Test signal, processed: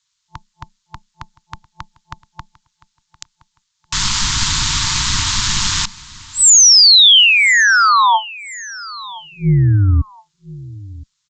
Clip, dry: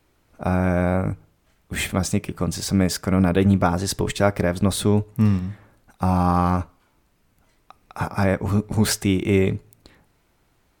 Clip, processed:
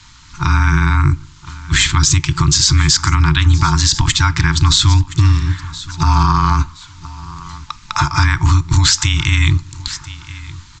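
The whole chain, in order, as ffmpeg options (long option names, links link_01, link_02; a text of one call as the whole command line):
ffmpeg -i in.wav -filter_complex "[0:a]afftfilt=real='re*(1-between(b*sr/4096,180,890))':imag='im*(1-between(b*sr/4096,180,890))':win_size=4096:overlap=0.75,acompressor=threshold=-33dB:ratio=3,aexciter=amount=3.6:drive=1.3:freq=3400,afreqshift=-15,tremolo=f=200:d=0.462,asplit=2[link_01][link_02];[link_02]aecho=0:1:1019|2038:0.1|0.031[link_03];[link_01][link_03]amix=inputs=2:normalize=0,aresample=16000,aresample=44100,alimiter=level_in=24.5dB:limit=-1dB:release=50:level=0:latency=1,volume=-1dB" out.wav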